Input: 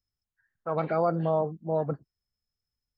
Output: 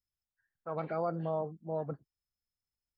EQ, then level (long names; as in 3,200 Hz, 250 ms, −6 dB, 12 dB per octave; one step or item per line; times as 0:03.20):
notch filter 3,800 Hz, Q 24
−8.0 dB